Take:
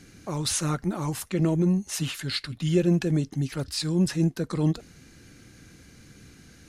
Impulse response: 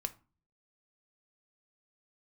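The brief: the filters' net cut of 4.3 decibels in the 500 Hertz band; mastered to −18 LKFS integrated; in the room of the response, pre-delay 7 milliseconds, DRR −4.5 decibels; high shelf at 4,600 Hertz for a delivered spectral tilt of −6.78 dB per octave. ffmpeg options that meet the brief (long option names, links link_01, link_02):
-filter_complex "[0:a]equalizer=frequency=500:width_type=o:gain=-7,highshelf=frequency=4600:gain=-6,asplit=2[link_01][link_02];[1:a]atrim=start_sample=2205,adelay=7[link_03];[link_02][link_03]afir=irnorm=-1:irlink=0,volume=5dB[link_04];[link_01][link_04]amix=inputs=2:normalize=0,volume=3dB"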